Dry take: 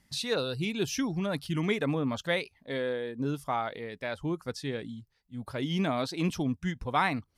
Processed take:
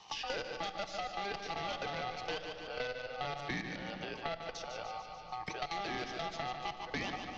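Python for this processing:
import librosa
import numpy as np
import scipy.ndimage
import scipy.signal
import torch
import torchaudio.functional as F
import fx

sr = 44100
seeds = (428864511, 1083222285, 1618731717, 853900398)

y = scipy.signal.sosfilt(scipy.signal.butter(4, 43.0, 'highpass', fs=sr, output='sos'), x)
y = y * np.sin(2.0 * np.pi * 1000.0 * np.arange(len(y)) / sr)
y = fx.low_shelf(y, sr, hz=130.0, db=-4.0)
y = fx.level_steps(y, sr, step_db=17)
y = fx.cheby_harmonics(y, sr, harmonics=(5, 8), levels_db=(-9, -16), full_scale_db=-19.5)
y = scipy.signal.sosfilt(scipy.signal.ellip(4, 1.0, 50, 6000.0, 'lowpass', fs=sr, output='sos'), y)
y = fx.peak_eq(y, sr, hz=1300.0, db=-10.5, octaves=0.8)
y = fx.echo_feedback(y, sr, ms=146, feedback_pct=40, wet_db=-8.0)
y = fx.room_shoebox(y, sr, seeds[0], volume_m3=1300.0, walls='mixed', distance_m=0.52)
y = fx.band_squash(y, sr, depth_pct=100)
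y = y * librosa.db_to_amplitude(-6.5)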